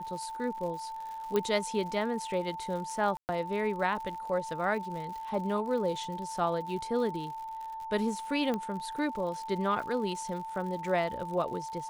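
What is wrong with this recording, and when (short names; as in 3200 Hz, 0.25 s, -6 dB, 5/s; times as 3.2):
crackle 110/s -40 dBFS
tone 890 Hz -37 dBFS
1.36 pop -16 dBFS
3.17–3.29 gap 0.119 s
8.54 pop -20 dBFS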